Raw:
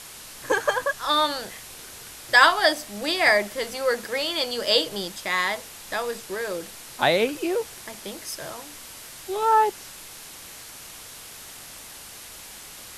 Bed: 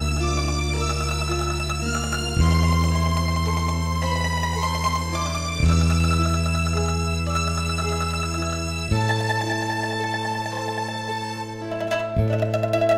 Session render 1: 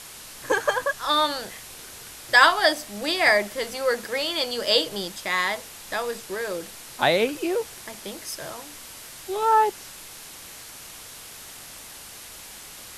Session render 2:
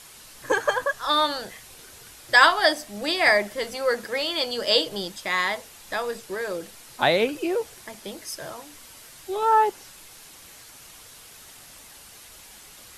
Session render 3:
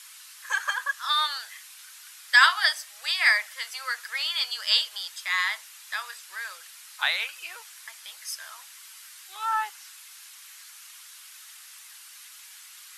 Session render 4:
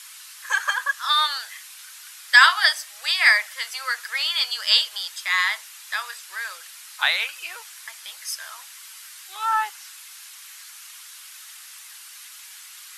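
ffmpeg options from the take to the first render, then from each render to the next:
-af anull
-af "afftdn=nr=6:nf=-42"
-af "highpass=f=1.2k:w=0.5412,highpass=f=1.2k:w=1.3066"
-af "volume=4.5dB,alimiter=limit=-1dB:level=0:latency=1"

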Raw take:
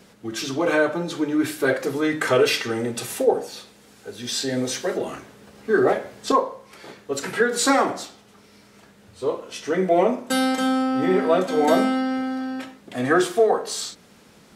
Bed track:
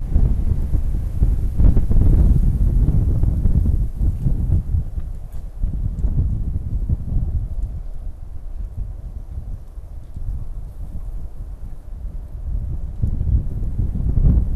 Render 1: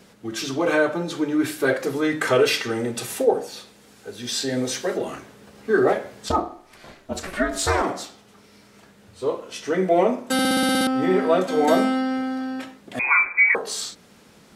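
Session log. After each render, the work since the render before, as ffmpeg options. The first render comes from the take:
-filter_complex "[0:a]asplit=3[a][b][c];[a]afade=t=out:st=6.28:d=0.02[d];[b]aeval=exprs='val(0)*sin(2*PI*190*n/s)':c=same,afade=t=in:st=6.28:d=0.02,afade=t=out:st=7.82:d=0.02[e];[c]afade=t=in:st=7.82:d=0.02[f];[d][e][f]amix=inputs=3:normalize=0,asettb=1/sr,asplit=3[g][h][i];[g]atrim=end=12.994[j];[h]atrim=start=12.99:end=13.55,asetpts=PTS-STARTPTS,afade=t=in:d=0.004:c=qsin,afade=t=out:st=0.556:d=0.004:c=qsin,lowpass=f=2.3k:t=q:w=0.5098,lowpass=f=2.3k:t=q:w=0.6013,lowpass=f=2.3k:t=q:w=0.9,lowpass=f=2.3k:t=q:w=2.563,afreqshift=-2700[k];[i]atrim=start=13.546[l];[j][k]acrossfade=d=0.004:c1=hsin:c2=qsin[m];[m][l]acrossfade=d=0.004:c1=qsin:c2=hsin,asplit=10[n][o][p][q][r][s][t][u][v][w];[n]atrim=end=10.392[x];[o]atrim=start=10.328:end=10.392[y];[p]atrim=start=10.328:end=10.392[z];[q]atrim=start=10.328:end=10.392[aa];[r]atrim=start=10.328:end=10.392[ab];[s]atrim=start=10.328:end=10.392[ac];[t]atrim=start=10.328:end=10.392[ad];[u]atrim=start=10.328:end=10.392[ae];[v]atrim=start=10.328:end=10.392[af];[w]atrim=start=10.868[ag];[x][y]acrossfade=d=0.004:c1=hsin:c2=hsin[ah];[ah][z]acrossfade=d=0.004:c1=hsin:c2=hsin[ai];[ai][aa]acrossfade=d=0.004:c1=hsin:c2=hsin[aj];[aj][ab]acrossfade=d=0.004:c1=hsin:c2=hsin[ak];[ak][ac]acrossfade=d=0.004:c1=hsin:c2=hsin[al];[al][ad]acrossfade=d=0.004:c1=hsin:c2=hsin[am];[am][ae]acrossfade=d=0.004:c1=hsin:c2=hsin[an];[an][af]acrossfade=d=0.004:c1=hsin:c2=hsin[ao];[ao][ag]acrossfade=d=0.004:c1=hsin:c2=hsin"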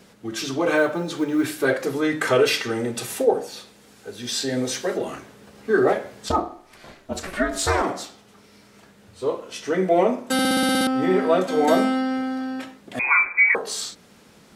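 -filter_complex "[0:a]asettb=1/sr,asplit=3[a][b][c];[a]atrim=end=0.754[d];[b]atrim=start=0.75:end=1.56,asetpts=PTS-STARTPTS,afade=t=in:d=0.004:c=qsin,afade=t=out:st=0.806:d=0.004:c=qsin,acrusher=bits=9:mode=log:mix=0:aa=0.000001[e];[c]atrim=start=1.556[f];[d][e]acrossfade=d=0.004:c1=hsin:c2=qsin[g];[g][f]acrossfade=d=0.004:c1=qsin:c2=hsin"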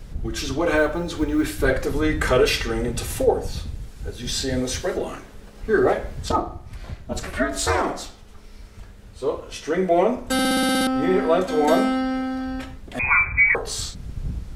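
-filter_complex "[1:a]volume=-14.5dB[a];[0:a][a]amix=inputs=2:normalize=0"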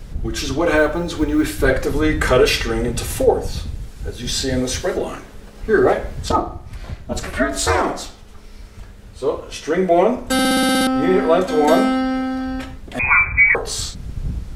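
-af "volume=4dB"

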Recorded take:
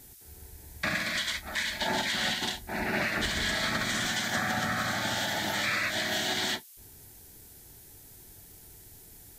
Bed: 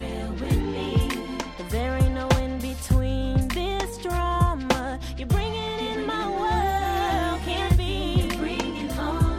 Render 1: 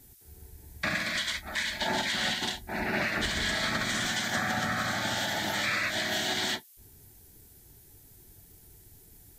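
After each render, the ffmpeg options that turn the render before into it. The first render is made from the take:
-af "afftdn=nr=6:nf=-52"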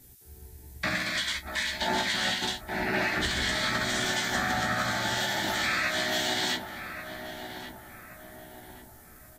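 -filter_complex "[0:a]asplit=2[a][b];[b]adelay=16,volume=-5dB[c];[a][c]amix=inputs=2:normalize=0,asplit=2[d][e];[e]adelay=1130,lowpass=f=1.6k:p=1,volume=-8dB,asplit=2[f][g];[g]adelay=1130,lowpass=f=1.6k:p=1,volume=0.48,asplit=2[h][i];[i]adelay=1130,lowpass=f=1.6k:p=1,volume=0.48,asplit=2[j][k];[k]adelay=1130,lowpass=f=1.6k:p=1,volume=0.48,asplit=2[l][m];[m]adelay=1130,lowpass=f=1.6k:p=1,volume=0.48,asplit=2[n][o];[o]adelay=1130,lowpass=f=1.6k:p=1,volume=0.48[p];[d][f][h][j][l][n][p]amix=inputs=7:normalize=0"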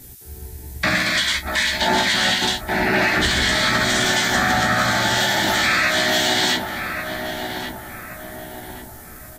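-filter_complex "[0:a]asplit=2[a][b];[b]alimiter=level_in=1dB:limit=-24dB:level=0:latency=1,volume=-1dB,volume=-1dB[c];[a][c]amix=inputs=2:normalize=0,acontrast=74"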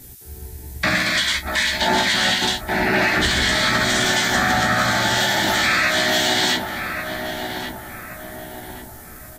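-af anull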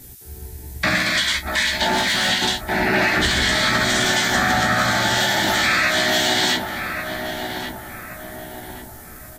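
-filter_complex "[0:a]asettb=1/sr,asplit=3[a][b][c];[a]atrim=end=1.874[d];[b]atrim=start=1.87:end=2.3,asetpts=PTS-STARTPTS,afade=t=in:d=0.004:c=qsin,afade=t=out:st=0.426:d=0.004:c=qsin,volume=15.5dB,asoftclip=hard,volume=-15.5dB[e];[c]atrim=start=2.296[f];[d][e]acrossfade=d=0.004:c1=hsin:c2=qsin[g];[g][f]acrossfade=d=0.004:c1=qsin:c2=hsin,asettb=1/sr,asplit=3[h][i][j];[h]atrim=end=3.044[k];[i]atrim=start=3.04:end=3.82,asetpts=PTS-STARTPTS,afade=t=in:d=0.004:c=qsin,afade=t=out:st=0.776:d=0.004:c=qsin,aeval=exprs='val(0)*gte(abs(val(0)),0.00447)':c=same[l];[j]atrim=start=3.816[m];[k][l]acrossfade=d=0.004:c1=hsin:c2=qsin[n];[n][m]acrossfade=d=0.004:c1=qsin:c2=hsin"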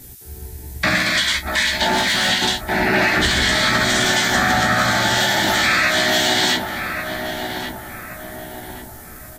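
-af "volume=1.5dB"

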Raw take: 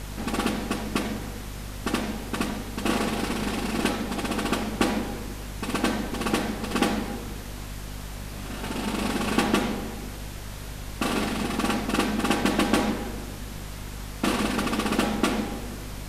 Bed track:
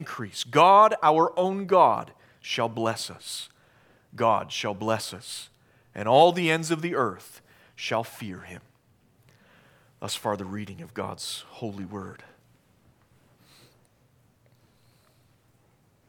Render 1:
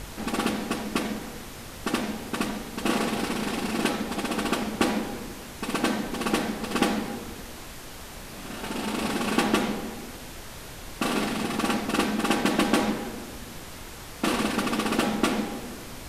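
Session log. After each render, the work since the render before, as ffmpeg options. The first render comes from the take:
-af "bandreject=f=50:t=h:w=4,bandreject=f=100:t=h:w=4,bandreject=f=150:t=h:w=4,bandreject=f=200:t=h:w=4,bandreject=f=250:t=h:w=4"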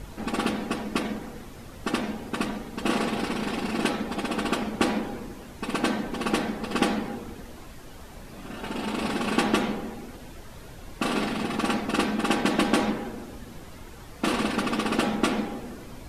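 -af "afftdn=nr=9:nf=-41"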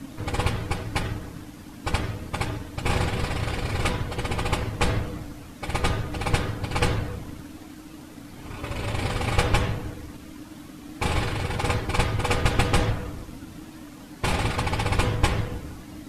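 -filter_complex "[0:a]afreqshift=-320,asplit=2[a][b];[b]aeval=exprs='sgn(val(0))*max(abs(val(0))-0.00944,0)':c=same,volume=-10.5dB[c];[a][c]amix=inputs=2:normalize=0"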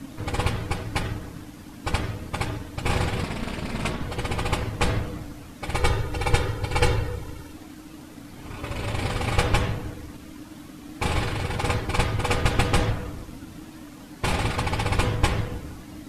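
-filter_complex "[0:a]asettb=1/sr,asplit=3[a][b][c];[a]atrim=end=3.234[d];[b]atrim=start=3.23:end=4.02,asetpts=PTS-STARTPTS,afade=t=in:d=0.004:c=qsin,afade=t=out:st=0.786:d=0.004:c=qsin,aeval=exprs='val(0)*sin(2*PI*130*n/s)':c=same[e];[c]atrim=start=4.016[f];[d][e]acrossfade=d=0.004:c1=hsin:c2=qsin[g];[g][f]acrossfade=d=0.004:c1=qsin:c2=hsin,asettb=1/sr,asplit=3[h][i][j];[h]atrim=end=5.764[k];[i]atrim=start=5.76:end=7.53,asetpts=PTS-STARTPTS,afade=t=in:d=0.004:c=qsin,afade=t=out:st=1.766:d=0.004:c=qsin,aecho=1:1:2.2:0.65,atrim=end_sample=78057[l];[j]atrim=start=7.526[m];[k][l]acrossfade=d=0.004:c1=hsin:c2=qsin[n];[n][m]acrossfade=d=0.004:c1=qsin:c2=hsin"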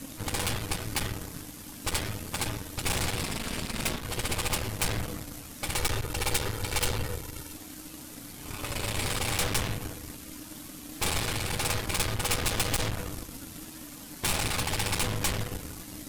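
-af "aeval=exprs='(tanh(25.1*val(0)+0.75)-tanh(0.75))/25.1':c=same,crystalizer=i=3.5:c=0"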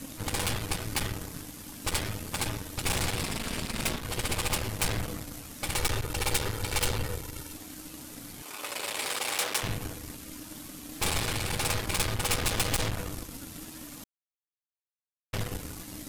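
-filter_complex "[0:a]asettb=1/sr,asplit=3[a][b][c];[a]atrim=end=8.424[d];[b]atrim=start=8.42:end=9.63,asetpts=PTS-STARTPTS,afade=t=in:d=0.004:c=qsin,afade=t=out:st=1.206:d=0.004:c=qsin,highpass=440[e];[c]atrim=start=9.626[f];[d][e]acrossfade=d=0.004:c1=hsin:c2=qsin[g];[g][f]acrossfade=d=0.004:c1=qsin:c2=hsin,asplit=3[h][i][j];[h]atrim=end=14.04,asetpts=PTS-STARTPTS,afade=t=out:st=14.036:d=0.004:c=hsin[k];[i]atrim=start=14.04:end=15.33,asetpts=PTS-STARTPTS,volume=0[l];[j]atrim=start=15.33,asetpts=PTS-STARTPTS,afade=t=in:d=0.004:c=hsin[m];[k][l][m]concat=n=3:v=0:a=1"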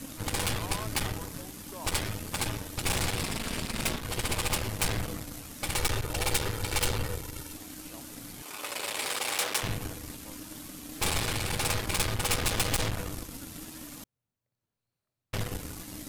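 -filter_complex "[1:a]volume=-26.5dB[a];[0:a][a]amix=inputs=2:normalize=0"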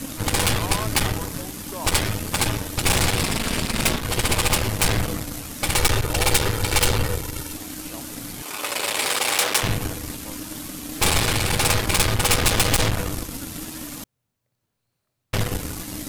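-af "volume=9.5dB,alimiter=limit=-3dB:level=0:latency=1"

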